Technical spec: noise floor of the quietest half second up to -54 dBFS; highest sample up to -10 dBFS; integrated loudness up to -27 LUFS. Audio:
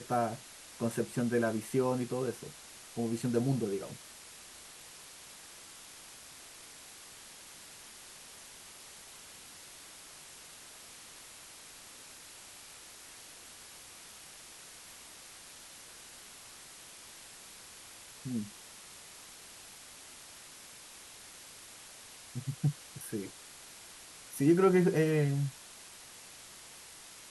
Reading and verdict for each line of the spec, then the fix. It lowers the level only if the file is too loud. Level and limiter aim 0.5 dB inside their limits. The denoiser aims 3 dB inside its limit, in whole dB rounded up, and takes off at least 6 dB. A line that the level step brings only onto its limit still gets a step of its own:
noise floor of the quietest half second -52 dBFS: fail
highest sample -14.5 dBFS: OK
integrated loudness -32.5 LUFS: OK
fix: denoiser 6 dB, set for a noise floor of -52 dBFS

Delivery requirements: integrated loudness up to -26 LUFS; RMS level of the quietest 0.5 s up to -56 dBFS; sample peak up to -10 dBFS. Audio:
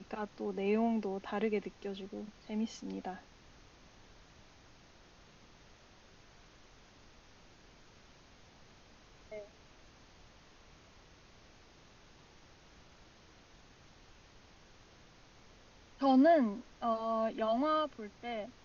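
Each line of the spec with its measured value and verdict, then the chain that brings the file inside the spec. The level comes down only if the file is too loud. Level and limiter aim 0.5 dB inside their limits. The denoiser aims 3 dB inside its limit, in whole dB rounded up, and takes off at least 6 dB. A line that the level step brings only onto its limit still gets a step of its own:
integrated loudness -34.0 LUFS: OK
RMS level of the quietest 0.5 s -60 dBFS: OK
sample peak -17.0 dBFS: OK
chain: none

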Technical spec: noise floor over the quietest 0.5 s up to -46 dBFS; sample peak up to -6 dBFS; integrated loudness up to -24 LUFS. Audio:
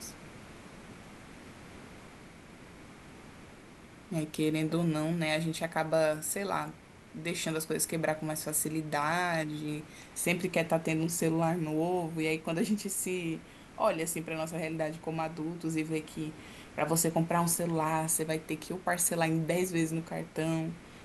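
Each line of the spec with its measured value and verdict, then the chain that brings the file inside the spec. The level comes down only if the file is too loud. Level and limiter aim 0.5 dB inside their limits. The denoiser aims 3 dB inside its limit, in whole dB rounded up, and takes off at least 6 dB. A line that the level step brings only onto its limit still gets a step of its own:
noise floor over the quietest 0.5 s -52 dBFS: OK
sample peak -14.0 dBFS: OK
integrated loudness -32.0 LUFS: OK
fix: none

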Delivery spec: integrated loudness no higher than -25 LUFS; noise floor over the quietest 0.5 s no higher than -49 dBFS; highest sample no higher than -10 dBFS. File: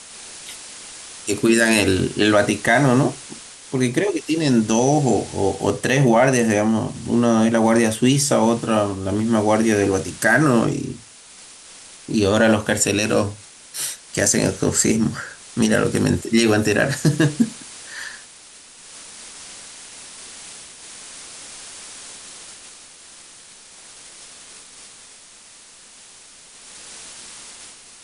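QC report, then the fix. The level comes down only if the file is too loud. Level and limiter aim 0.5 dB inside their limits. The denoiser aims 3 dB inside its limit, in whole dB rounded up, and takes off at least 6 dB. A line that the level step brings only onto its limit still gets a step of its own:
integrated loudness -18.5 LUFS: fail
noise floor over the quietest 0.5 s -45 dBFS: fail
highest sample -5.0 dBFS: fail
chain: gain -7 dB

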